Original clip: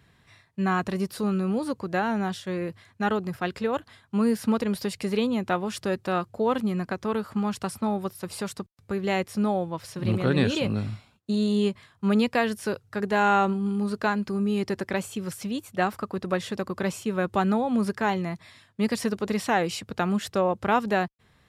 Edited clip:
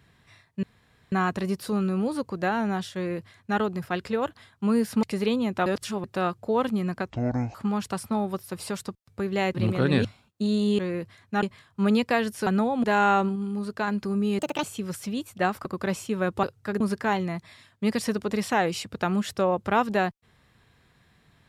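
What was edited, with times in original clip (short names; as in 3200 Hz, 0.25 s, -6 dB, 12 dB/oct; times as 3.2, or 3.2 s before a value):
0.63 insert room tone 0.49 s
2.46–3.1 copy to 11.67
4.54–4.94 cut
5.57–5.95 reverse
7.01–7.26 speed 56%
9.26–10 cut
10.5–10.93 cut
12.71–13.08 swap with 17.4–17.77
13.6–14.12 gain -3.5 dB
14.63–15.01 speed 154%
16.03–16.62 cut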